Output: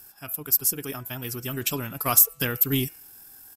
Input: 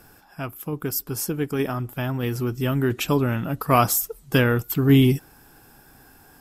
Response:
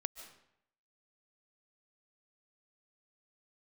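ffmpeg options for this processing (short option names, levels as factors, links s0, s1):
-af "aeval=exprs='0.631*(cos(1*acos(clip(val(0)/0.631,-1,1)))-cos(1*PI/2))+0.01*(cos(6*acos(clip(val(0)/0.631,-1,1)))-cos(6*PI/2))':c=same,crystalizer=i=6:c=0,atempo=1.8,bandreject=f=165.3:t=h:w=4,bandreject=f=330.6:t=h:w=4,bandreject=f=495.9:t=h:w=4,bandreject=f=661.2:t=h:w=4,bandreject=f=826.5:t=h:w=4,bandreject=f=991.8:t=h:w=4,bandreject=f=1157.1:t=h:w=4,bandreject=f=1322.4:t=h:w=4,bandreject=f=1487.7:t=h:w=4,bandreject=f=1653:t=h:w=4,bandreject=f=1818.3:t=h:w=4,bandreject=f=1983.6:t=h:w=4,bandreject=f=2148.9:t=h:w=4,bandreject=f=2314.2:t=h:w=4,bandreject=f=2479.5:t=h:w=4,bandreject=f=2644.8:t=h:w=4,bandreject=f=2810.1:t=h:w=4,bandreject=f=2975.4:t=h:w=4,volume=0.316"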